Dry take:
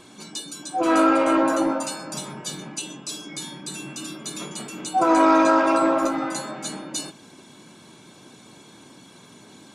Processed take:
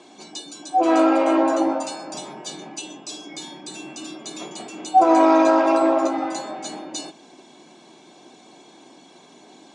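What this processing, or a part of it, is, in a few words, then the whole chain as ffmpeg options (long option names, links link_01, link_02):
television speaker: -af "highpass=frequency=180:width=0.5412,highpass=frequency=180:width=1.3066,equalizer=frequency=200:width_type=q:width=4:gain=-5,equalizer=frequency=350:width_type=q:width=4:gain=4,equalizer=frequency=730:width_type=q:width=4:gain=10,equalizer=frequency=1400:width_type=q:width=4:gain=-6,lowpass=frequency=7700:width=0.5412,lowpass=frequency=7700:width=1.3066,volume=-1dB"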